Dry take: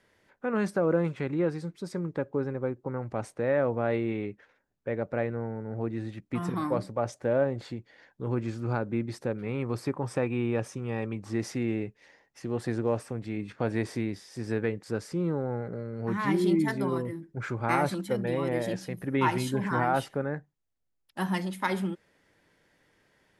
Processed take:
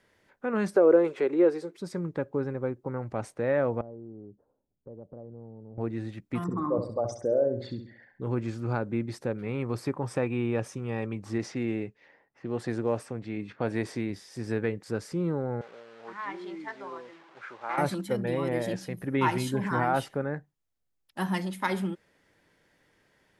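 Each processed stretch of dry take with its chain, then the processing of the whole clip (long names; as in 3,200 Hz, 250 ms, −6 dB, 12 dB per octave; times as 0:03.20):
0:00.76–0:01.77: upward compression, threshold −36 dBFS + high-pass with resonance 400 Hz, resonance Q 3.3
0:03.81–0:05.78: Bessel low-pass filter 540 Hz, order 8 + downward compressor 2.5 to 1, threshold −46 dBFS
0:06.44–0:08.22: spectral envelope exaggerated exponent 2 + flutter between parallel walls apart 11.4 metres, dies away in 0.48 s
0:11.38–0:14.10: low-pass that shuts in the quiet parts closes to 1,600 Hz, open at −25.5 dBFS + low-shelf EQ 75 Hz −8.5 dB
0:15.61–0:17.78: linear delta modulator 64 kbit/s, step −38.5 dBFS + high-pass filter 750 Hz + head-to-tape spacing loss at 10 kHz 30 dB
whole clip: no processing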